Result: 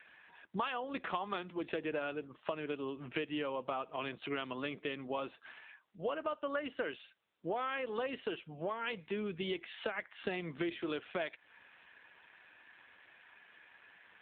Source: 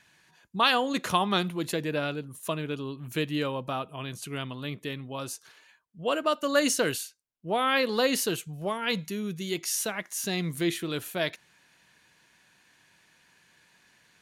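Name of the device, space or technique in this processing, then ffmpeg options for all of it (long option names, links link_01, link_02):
voicemail: -af "highpass=340,lowpass=3200,acompressor=threshold=-40dB:ratio=10,volume=7dB" -ar 8000 -c:a libopencore_amrnb -b:a 7400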